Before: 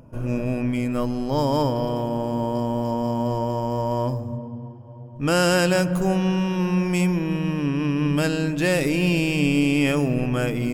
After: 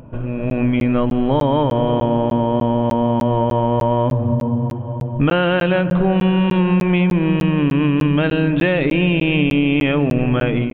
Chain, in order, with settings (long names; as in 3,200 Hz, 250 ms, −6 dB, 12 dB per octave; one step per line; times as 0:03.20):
downward compressor 6 to 1, threshold −30 dBFS, peak gain reduction 14.5 dB
downsampling to 8,000 Hz
automatic gain control gain up to 8.5 dB
regular buffer underruns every 0.30 s, samples 512, zero, from 0:00.50
level +8 dB